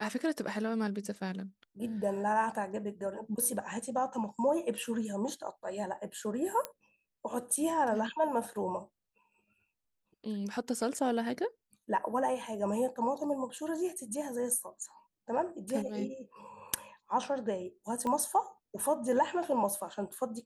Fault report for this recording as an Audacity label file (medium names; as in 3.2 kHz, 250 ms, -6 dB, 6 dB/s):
6.650000	6.650000	pop -18 dBFS
18.070000	18.070000	pop -23 dBFS